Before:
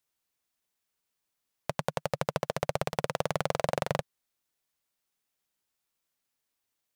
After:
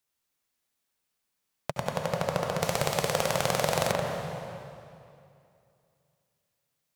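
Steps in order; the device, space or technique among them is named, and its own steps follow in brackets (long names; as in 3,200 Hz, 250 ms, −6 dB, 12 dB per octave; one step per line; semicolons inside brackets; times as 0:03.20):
stairwell (convolution reverb RT60 2.6 s, pre-delay 66 ms, DRR 0.5 dB)
0:02.62–0:03.92: high-shelf EQ 3,200 Hz +10 dB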